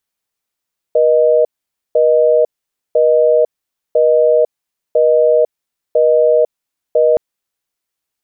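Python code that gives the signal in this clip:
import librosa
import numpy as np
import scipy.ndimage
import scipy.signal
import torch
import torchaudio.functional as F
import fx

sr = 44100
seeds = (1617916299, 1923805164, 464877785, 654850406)

y = fx.call_progress(sr, length_s=6.22, kind='busy tone', level_db=-10.5)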